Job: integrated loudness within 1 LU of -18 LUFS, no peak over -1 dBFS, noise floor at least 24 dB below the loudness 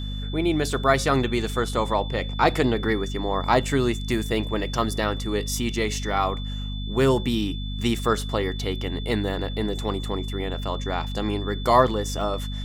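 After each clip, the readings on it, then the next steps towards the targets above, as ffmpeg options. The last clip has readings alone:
hum 50 Hz; highest harmonic 250 Hz; hum level -28 dBFS; steady tone 3.5 kHz; tone level -38 dBFS; loudness -24.5 LUFS; peak level -4.0 dBFS; loudness target -18.0 LUFS
-> -af "bandreject=f=50:t=h:w=6,bandreject=f=100:t=h:w=6,bandreject=f=150:t=h:w=6,bandreject=f=200:t=h:w=6,bandreject=f=250:t=h:w=6"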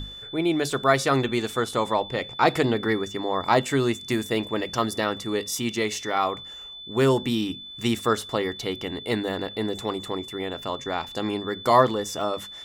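hum not found; steady tone 3.5 kHz; tone level -38 dBFS
-> -af "bandreject=f=3500:w=30"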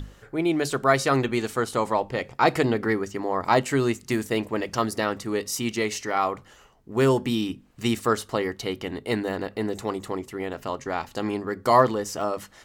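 steady tone not found; loudness -25.5 LUFS; peak level -4.5 dBFS; loudness target -18.0 LUFS
-> -af "volume=2.37,alimiter=limit=0.891:level=0:latency=1"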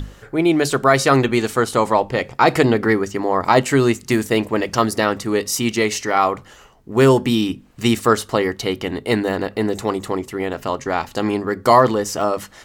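loudness -18.5 LUFS; peak level -1.0 dBFS; noise floor -46 dBFS

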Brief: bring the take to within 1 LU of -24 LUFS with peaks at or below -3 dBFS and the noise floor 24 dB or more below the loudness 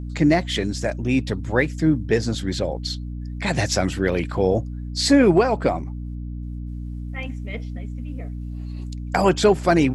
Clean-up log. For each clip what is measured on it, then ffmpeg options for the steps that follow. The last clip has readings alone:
hum 60 Hz; highest harmonic 300 Hz; hum level -28 dBFS; loudness -21.5 LUFS; peak level -5.0 dBFS; loudness target -24.0 LUFS
-> -af "bandreject=f=60:t=h:w=4,bandreject=f=120:t=h:w=4,bandreject=f=180:t=h:w=4,bandreject=f=240:t=h:w=4,bandreject=f=300:t=h:w=4"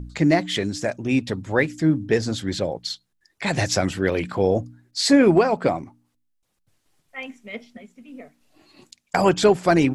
hum not found; loudness -21.5 LUFS; peak level -5.0 dBFS; loudness target -24.0 LUFS
-> -af "volume=0.75"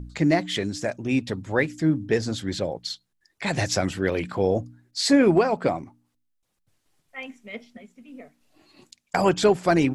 loudness -24.0 LUFS; peak level -7.5 dBFS; noise floor -74 dBFS

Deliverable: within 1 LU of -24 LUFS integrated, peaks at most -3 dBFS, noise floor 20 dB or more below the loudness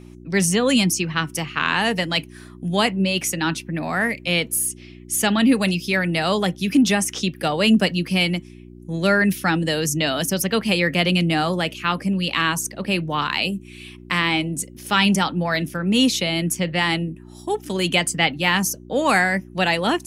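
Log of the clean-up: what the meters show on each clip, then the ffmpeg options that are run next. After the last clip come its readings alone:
hum 60 Hz; highest harmonic 360 Hz; hum level -41 dBFS; loudness -20.5 LUFS; peak level -3.5 dBFS; loudness target -24.0 LUFS
-> -af "bandreject=f=60:t=h:w=4,bandreject=f=120:t=h:w=4,bandreject=f=180:t=h:w=4,bandreject=f=240:t=h:w=4,bandreject=f=300:t=h:w=4,bandreject=f=360:t=h:w=4"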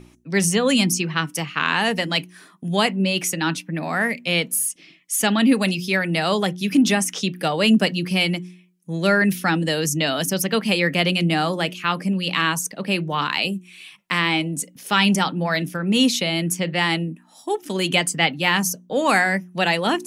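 hum not found; loudness -20.5 LUFS; peak level -3.5 dBFS; loudness target -24.0 LUFS
-> -af "volume=0.668"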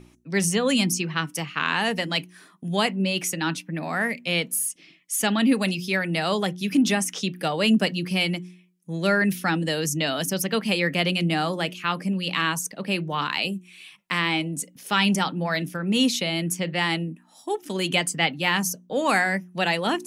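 loudness -24.0 LUFS; peak level -7.0 dBFS; noise floor -56 dBFS

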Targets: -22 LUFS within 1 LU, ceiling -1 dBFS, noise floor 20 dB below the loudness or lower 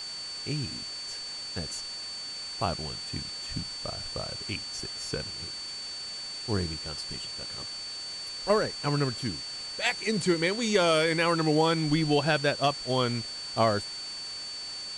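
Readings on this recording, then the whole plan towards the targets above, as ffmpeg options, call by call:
steady tone 4.5 kHz; tone level -36 dBFS; noise floor -38 dBFS; noise floor target -50 dBFS; loudness -29.5 LUFS; peak level -13.5 dBFS; loudness target -22.0 LUFS
-> -af "bandreject=f=4500:w=30"
-af "afftdn=nr=12:nf=-38"
-af "volume=2.37"

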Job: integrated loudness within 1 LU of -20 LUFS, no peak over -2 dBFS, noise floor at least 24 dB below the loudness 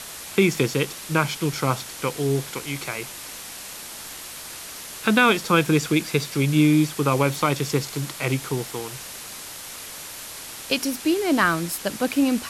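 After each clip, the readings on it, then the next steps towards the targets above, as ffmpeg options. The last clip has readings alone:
noise floor -38 dBFS; noise floor target -47 dBFS; loudness -22.5 LUFS; peak level -4.0 dBFS; loudness target -20.0 LUFS
-> -af "afftdn=nr=9:nf=-38"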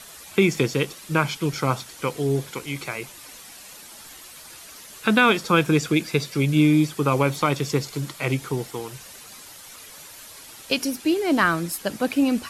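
noise floor -44 dBFS; noise floor target -47 dBFS
-> -af "afftdn=nr=6:nf=-44"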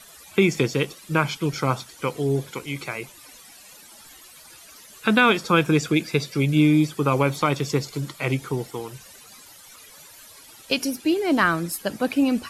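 noise floor -47 dBFS; loudness -23.0 LUFS; peak level -4.0 dBFS; loudness target -20.0 LUFS
-> -af "volume=1.41,alimiter=limit=0.794:level=0:latency=1"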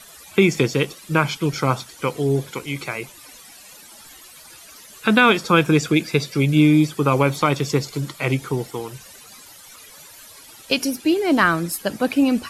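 loudness -20.0 LUFS; peak level -2.0 dBFS; noise floor -44 dBFS

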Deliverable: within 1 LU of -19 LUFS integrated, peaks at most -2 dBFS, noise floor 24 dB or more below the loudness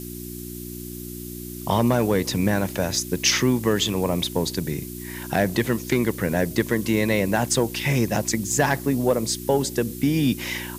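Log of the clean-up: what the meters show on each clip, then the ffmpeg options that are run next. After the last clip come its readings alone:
hum 60 Hz; highest harmonic 360 Hz; hum level -34 dBFS; noise floor -35 dBFS; noise floor target -47 dBFS; loudness -22.5 LUFS; peak level -7.0 dBFS; loudness target -19.0 LUFS
-> -af "bandreject=f=60:t=h:w=4,bandreject=f=120:t=h:w=4,bandreject=f=180:t=h:w=4,bandreject=f=240:t=h:w=4,bandreject=f=300:t=h:w=4,bandreject=f=360:t=h:w=4"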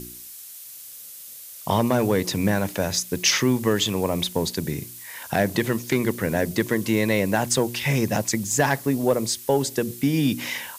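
hum not found; noise floor -41 dBFS; noise floor target -47 dBFS
-> -af "afftdn=nr=6:nf=-41"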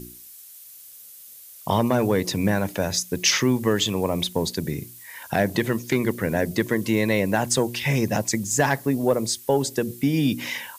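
noise floor -45 dBFS; noise floor target -47 dBFS
-> -af "afftdn=nr=6:nf=-45"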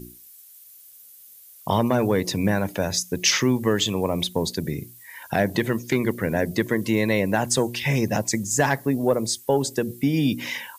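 noise floor -48 dBFS; loudness -23.0 LUFS; peak level -7.5 dBFS; loudness target -19.0 LUFS
-> -af "volume=1.58"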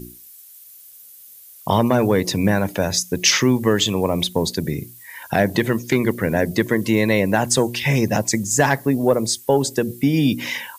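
loudness -19.0 LUFS; peak level -3.5 dBFS; noise floor -44 dBFS

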